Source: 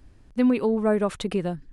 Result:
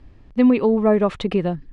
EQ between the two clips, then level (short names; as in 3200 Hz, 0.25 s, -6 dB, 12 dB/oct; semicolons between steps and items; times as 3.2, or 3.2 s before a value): LPF 3700 Hz 12 dB/oct; notch 1500 Hz, Q 9.3; +5.5 dB